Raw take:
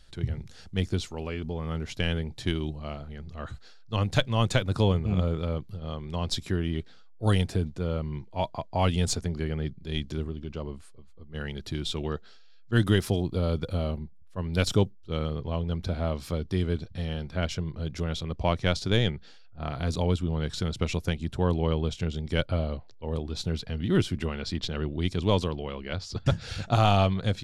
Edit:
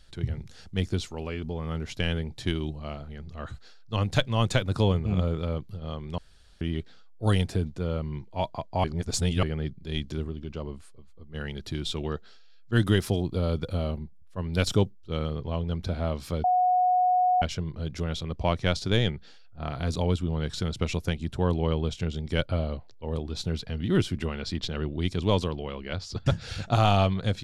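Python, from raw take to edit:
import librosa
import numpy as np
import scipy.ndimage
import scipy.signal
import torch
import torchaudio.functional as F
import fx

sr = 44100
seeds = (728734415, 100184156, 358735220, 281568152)

y = fx.edit(x, sr, fx.room_tone_fill(start_s=6.18, length_s=0.43),
    fx.reverse_span(start_s=8.84, length_s=0.59),
    fx.bleep(start_s=16.44, length_s=0.98, hz=730.0, db=-19.0), tone=tone)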